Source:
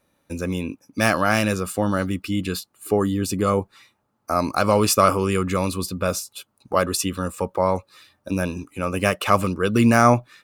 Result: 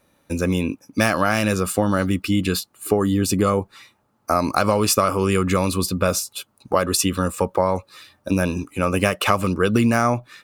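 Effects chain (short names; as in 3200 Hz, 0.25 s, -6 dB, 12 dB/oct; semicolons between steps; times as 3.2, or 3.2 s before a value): compressor 12:1, threshold -19 dBFS, peak gain reduction 10.5 dB; gain +5.5 dB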